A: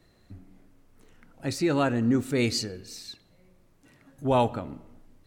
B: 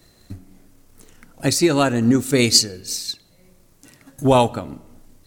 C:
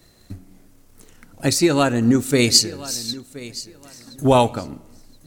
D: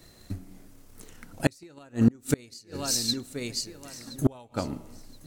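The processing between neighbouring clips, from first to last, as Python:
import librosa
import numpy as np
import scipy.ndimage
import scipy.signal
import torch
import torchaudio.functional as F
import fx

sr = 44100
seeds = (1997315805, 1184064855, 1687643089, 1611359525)

y1 = fx.bass_treble(x, sr, bass_db=0, treble_db=11)
y1 = fx.transient(y1, sr, attack_db=6, sustain_db=-2)
y1 = y1 * 10.0 ** (6.0 / 20.0)
y2 = fx.echo_feedback(y1, sr, ms=1023, feedback_pct=22, wet_db=-18)
y3 = fx.gate_flip(y2, sr, shuts_db=-9.0, range_db=-33)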